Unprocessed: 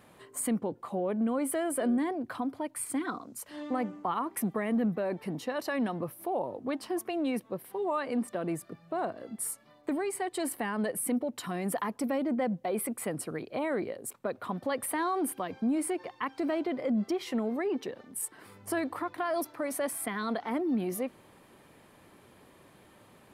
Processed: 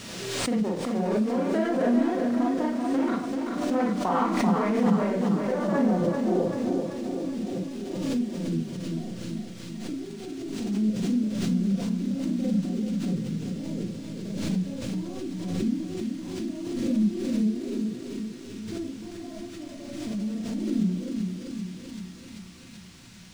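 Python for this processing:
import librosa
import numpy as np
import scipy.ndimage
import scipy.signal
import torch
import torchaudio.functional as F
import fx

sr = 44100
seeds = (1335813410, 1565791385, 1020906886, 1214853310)

p1 = fx.wiener(x, sr, points=41)
p2 = fx.filter_sweep_lowpass(p1, sr, from_hz=4800.0, to_hz=130.0, start_s=4.89, end_s=6.96, q=0.88)
p3 = fx.rider(p2, sr, range_db=5, speed_s=2.0)
p4 = fx.dmg_noise_colour(p3, sr, seeds[0], colour='blue', level_db=-50.0)
p5 = fx.air_absorb(p4, sr, metres=120.0)
p6 = p5 + fx.echo_feedback(p5, sr, ms=387, feedback_pct=59, wet_db=-5, dry=0)
p7 = fx.rev_schroeder(p6, sr, rt60_s=0.34, comb_ms=33, drr_db=-4.5)
p8 = fx.pre_swell(p7, sr, db_per_s=33.0)
y = p8 * 10.0 ** (2.5 / 20.0)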